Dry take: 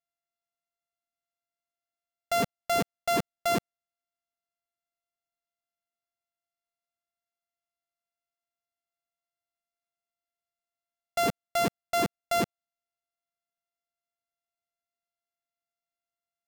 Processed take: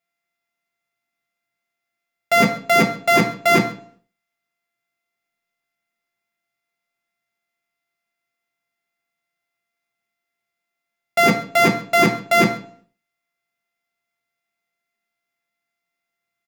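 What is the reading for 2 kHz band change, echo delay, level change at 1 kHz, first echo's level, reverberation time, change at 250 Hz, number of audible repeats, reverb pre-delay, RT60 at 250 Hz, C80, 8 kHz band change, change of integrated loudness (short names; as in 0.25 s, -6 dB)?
+18.0 dB, 0.133 s, +10.5 dB, -20.5 dB, 0.50 s, +13.5 dB, 1, 3 ms, 0.60 s, 14.0 dB, +7.5 dB, +12.5 dB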